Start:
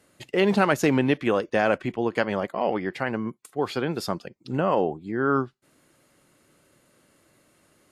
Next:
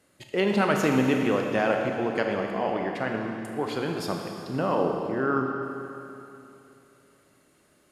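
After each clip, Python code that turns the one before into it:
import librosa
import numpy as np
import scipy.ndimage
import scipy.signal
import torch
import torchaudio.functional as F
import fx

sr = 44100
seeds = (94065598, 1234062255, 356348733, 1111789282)

y = fx.rev_schroeder(x, sr, rt60_s=2.9, comb_ms=27, drr_db=2.0)
y = y * librosa.db_to_amplitude(-3.5)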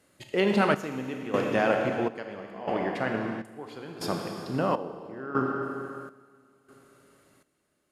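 y = fx.step_gate(x, sr, bpm=101, pattern='xxxxx....', floor_db=-12.0, edge_ms=4.5)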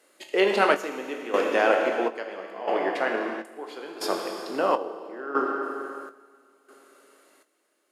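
y = scipy.signal.sosfilt(scipy.signal.butter(4, 320.0, 'highpass', fs=sr, output='sos'), x)
y = fx.doubler(y, sr, ms=21.0, db=-10.5)
y = y * librosa.db_to_amplitude(4.0)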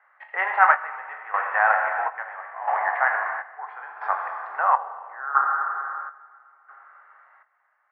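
y = scipy.signal.sosfilt(scipy.signal.ellip(3, 1.0, 70, [780.0, 1900.0], 'bandpass', fs=sr, output='sos'), x)
y = fx.rider(y, sr, range_db=3, speed_s=2.0)
y = y * librosa.db_to_amplitude(7.0)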